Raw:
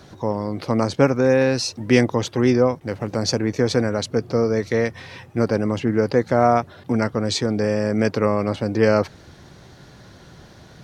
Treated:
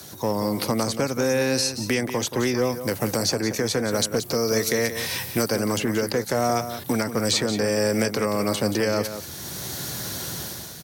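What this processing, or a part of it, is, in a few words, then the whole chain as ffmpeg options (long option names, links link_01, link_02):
FM broadcast chain: -filter_complex "[0:a]highpass=76,dynaudnorm=framelen=100:gausssize=9:maxgain=10dB,acrossover=split=110|530|2700[link_01][link_02][link_03][link_04];[link_01]acompressor=threshold=-39dB:ratio=4[link_05];[link_02]acompressor=threshold=-21dB:ratio=4[link_06];[link_03]acompressor=threshold=-24dB:ratio=4[link_07];[link_04]acompressor=threshold=-39dB:ratio=4[link_08];[link_05][link_06][link_07][link_08]amix=inputs=4:normalize=0,aemphasis=mode=production:type=50fm,alimiter=limit=-13dB:level=0:latency=1:release=408,asoftclip=type=hard:threshold=-15dB,lowpass=frequency=15000:width=0.5412,lowpass=frequency=15000:width=1.3066,aemphasis=mode=production:type=50fm,asettb=1/sr,asplit=3[link_09][link_10][link_11];[link_09]atrim=end=3.914[link_12];[link_10]atrim=start=3.91:end=5.52,asetpts=PTS-STARTPTS,afade=type=in:duration=0.004:curve=qsin,afade=type=out:start_time=1.606:duration=0.004:curve=qsin,highshelf=frequency=5100:gain=5.5[link_13];[link_11]atrim=start=5.516[link_14];[link_12][link_13]acrossfade=duration=0.004:curve1=hsin:curve2=qsin[link_15];[link_15][link_14]acrossfade=duration=0.004:curve1=qsin:curve2=hsin,aecho=1:1:178:0.299"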